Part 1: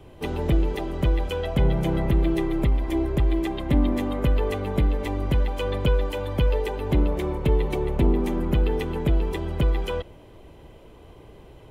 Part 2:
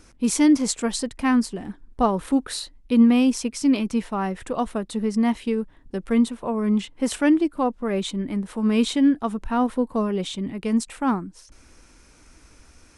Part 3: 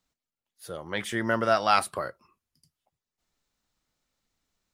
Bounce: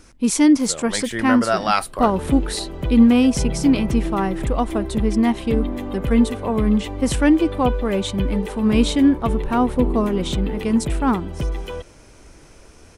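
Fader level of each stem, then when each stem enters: −2.5, +3.0, +3.0 decibels; 1.80, 0.00, 0.00 seconds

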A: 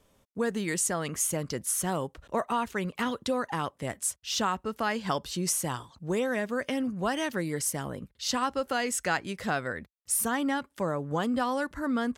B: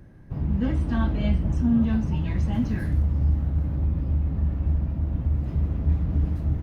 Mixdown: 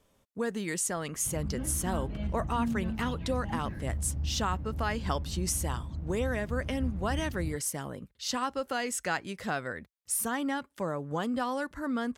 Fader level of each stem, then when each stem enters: −3.0, −11.5 decibels; 0.00, 0.95 seconds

